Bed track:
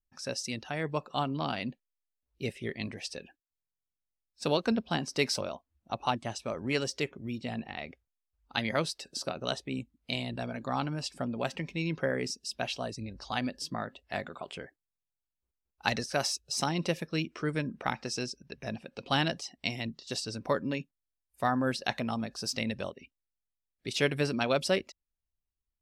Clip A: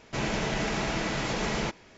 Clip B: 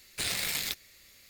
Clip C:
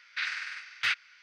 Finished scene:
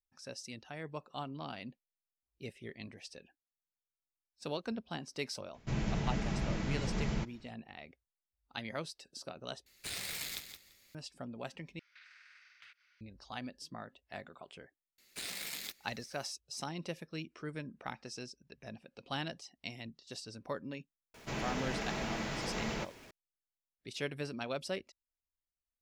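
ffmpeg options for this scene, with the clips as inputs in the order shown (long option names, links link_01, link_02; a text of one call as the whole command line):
ffmpeg -i bed.wav -i cue0.wav -i cue1.wav -i cue2.wav -filter_complex "[1:a]asplit=2[link_01][link_02];[2:a]asplit=2[link_03][link_04];[0:a]volume=-10.5dB[link_05];[link_01]bass=frequency=250:gain=14,treble=frequency=4000:gain=0[link_06];[link_03]aecho=1:1:170|340|510:0.376|0.0677|0.0122[link_07];[3:a]acompressor=threshold=-42dB:ratio=6:attack=3.2:release=140:knee=1:detection=peak[link_08];[link_04]lowshelf=frequency=150:width_type=q:width=1.5:gain=-8[link_09];[link_02]aeval=exprs='val(0)+0.5*0.00562*sgn(val(0))':channel_layout=same[link_10];[link_05]asplit=3[link_11][link_12][link_13];[link_11]atrim=end=9.664[link_14];[link_07]atrim=end=1.29,asetpts=PTS-STARTPTS,volume=-9dB[link_15];[link_12]atrim=start=10.946:end=11.794[link_16];[link_08]atrim=end=1.22,asetpts=PTS-STARTPTS,volume=-14dB[link_17];[link_13]atrim=start=13.006[link_18];[link_06]atrim=end=1.97,asetpts=PTS-STARTPTS,volume=-12.5dB,afade=type=in:duration=0.004:curve=hsin,afade=type=out:start_time=1.966:duration=0.004:curve=hsin,adelay=5540[link_19];[link_09]atrim=end=1.29,asetpts=PTS-STARTPTS,volume=-10dB,afade=type=in:duration=0.004:curve=hsin,afade=type=out:start_time=1.286:duration=0.004:curve=hsin,adelay=14980[link_20];[link_10]atrim=end=1.97,asetpts=PTS-STARTPTS,volume=-9dB,afade=type=in:duration=0.004:curve=hsin,afade=type=out:start_time=1.966:duration=0.004:curve=hsin,adelay=21140[link_21];[link_14][link_15]acrossfade=duration=0.004:curve1=hsin:curve2=hsin[link_22];[link_22][link_16]acrossfade=duration=0.004:curve1=hsin:curve2=hsin[link_23];[link_23][link_17]acrossfade=duration=0.004:curve1=hsin:curve2=hsin[link_24];[link_24][link_18]acrossfade=duration=0.004:curve1=hsin:curve2=hsin[link_25];[link_25][link_19][link_20][link_21]amix=inputs=4:normalize=0" out.wav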